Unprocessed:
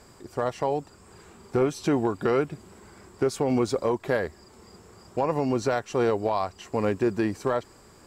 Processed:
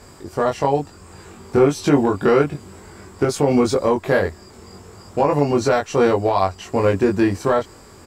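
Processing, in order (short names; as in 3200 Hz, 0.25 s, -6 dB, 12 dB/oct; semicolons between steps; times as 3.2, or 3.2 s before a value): bell 82 Hz +5.5 dB 0.54 oct; doubler 21 ms -2 dB; gain +6 dB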